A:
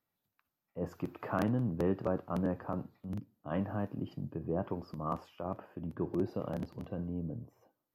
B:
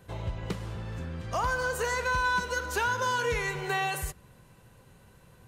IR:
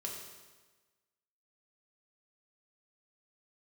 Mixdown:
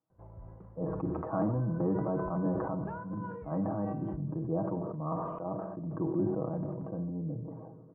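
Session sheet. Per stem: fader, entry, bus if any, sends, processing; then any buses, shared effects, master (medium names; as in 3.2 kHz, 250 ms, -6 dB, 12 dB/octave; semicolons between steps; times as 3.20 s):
-2.0 dB, 0.00 s, send -8 dB, high-pass 85 Hz; comb 6.3 ms, depth 66%
-11.0 dB, 0.10 s, no send, auto duck -9 dB, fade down 0.65 s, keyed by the first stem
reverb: on, RT60 1.3 s, pre-delay 3 ms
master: low-pass 1.1 kHz 24 dB/octave; band-stop 430 Hz, Q 12; decay stretcher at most 34 dB/s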